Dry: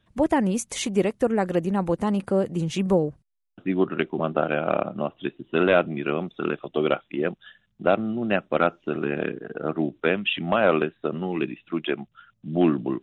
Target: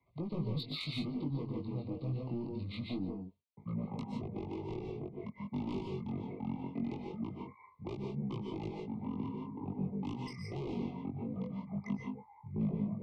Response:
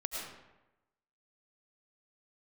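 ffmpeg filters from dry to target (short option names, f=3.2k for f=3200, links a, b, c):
-filter_complex "[0:a]highpass=130,acrossover=split=190[a][b];[a]acompressor=threshold=-46dB:ratio=8[c];[c][b]amix=inputs=2:normalize=0,aresample=16000,aresample=44100,asetrate=26990,aresample=44100,atempo=1.63392,asoftclip=type=tanh:threshold=-20.5dB,flanger=delay=18.5:depth=3.7:speed=0.23[d];[1:a]atrim=start_sample=2205,afade=t=out:st=0.18:d=0.01,atrim=end_sample=8379,asetrate=31752,aresample=44100[e];[d][e]afir=irnorm=-1:irlink=0,acrossover=split=230|3000[f][g][h];[g]acompressor=threshold=-40dB:ratio=6[i];[f][i][h]amix=inputs=3:normalize=0,asuperstop=centerf=1600:order=20:qfactor=2.1,volume=-4dB"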